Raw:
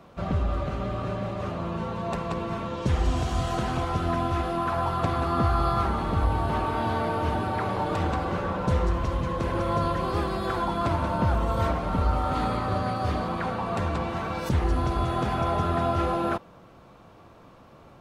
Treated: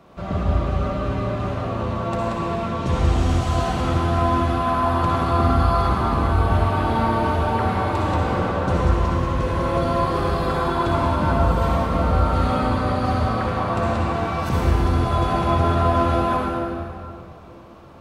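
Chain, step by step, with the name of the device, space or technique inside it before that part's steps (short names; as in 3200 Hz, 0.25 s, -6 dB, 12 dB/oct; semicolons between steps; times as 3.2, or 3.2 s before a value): stairwell (reverb RT60 2.5 s, pre-delay 53 ms, DRR -4 dB)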